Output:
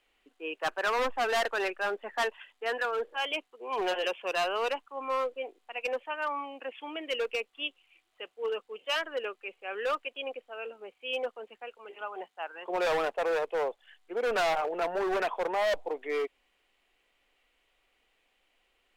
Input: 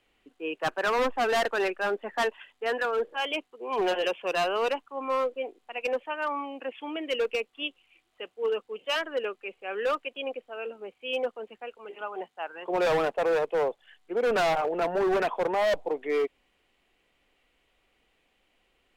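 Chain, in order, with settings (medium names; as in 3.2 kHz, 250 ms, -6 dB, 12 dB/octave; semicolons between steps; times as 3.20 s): peaking EQ 120 Hz -11.5 dB 2.8 oct; trim -1 dB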